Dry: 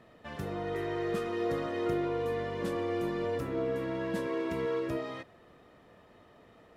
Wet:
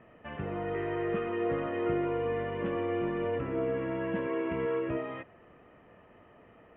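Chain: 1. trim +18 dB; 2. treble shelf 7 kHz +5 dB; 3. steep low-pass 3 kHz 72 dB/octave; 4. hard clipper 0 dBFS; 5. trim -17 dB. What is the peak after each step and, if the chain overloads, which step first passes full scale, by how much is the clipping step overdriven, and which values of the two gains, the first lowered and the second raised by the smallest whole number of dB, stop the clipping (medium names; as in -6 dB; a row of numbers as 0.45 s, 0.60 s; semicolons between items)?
-2.5 dBFS, -2.5 dBFS, -2.5 dBFS, -2.5 dBFS, -19.5 dBFS; nothing clips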